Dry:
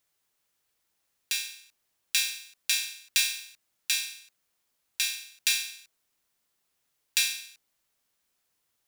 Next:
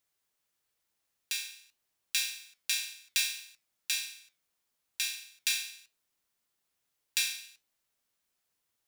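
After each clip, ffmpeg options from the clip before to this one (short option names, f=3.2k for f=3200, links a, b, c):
-af "flanger=delay=8.6:depth=2.9:regen=-80:speed=1.7:shape=triangular"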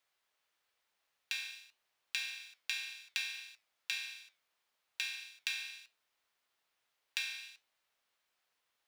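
-filter_complex "[0:a]acrossover=split=480 4500:gain=0.251 1 0.251[a][b][c];[a][b][c]amix=inputs=3:normalize=0,acrossover=split=2900|6600[d][e][f];[d]acompressor=threshold=-44dB:ratio=4[g];[e]acompressor=threshold=-49dB:ratio=4[h];[f]acompressor=threshold=-59dB:ratio=4[i];[g][h][i]amix=inputs=3:normalize=0,volume=5dB"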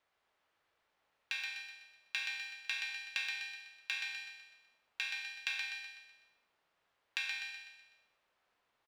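-filter_complex "[0:a]lowpass=f=1.2k:p=1,asplit=2[a][b];[b]aecho=0:1:125|250|375|500|625|750:0.596|0.274|0.126|0.058|0.0267|0.0123[c];[a][c]amix=inputs=2:normalize=0,volume=7.5dB"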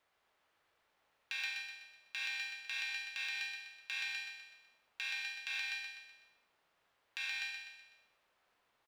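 -af "alimiter=level_in=5dB:limit=-24dB:level=0:latency=1:release=104,volume=-5dB,acrusher=bits=9:mode=log:mix=0:aa=0.000001,volume=2.5dB"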